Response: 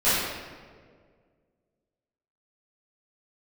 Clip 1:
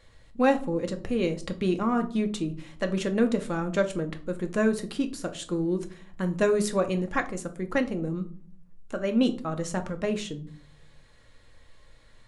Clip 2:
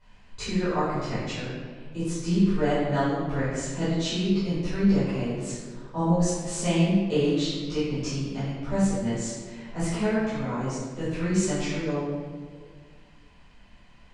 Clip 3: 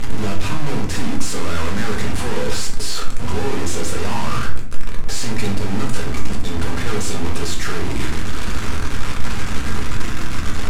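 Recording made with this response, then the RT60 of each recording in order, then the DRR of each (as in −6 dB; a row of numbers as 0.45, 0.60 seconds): 2; 0.45, 1.8, 0.65 seconds; 5.5, −16.0, −1.5 decibels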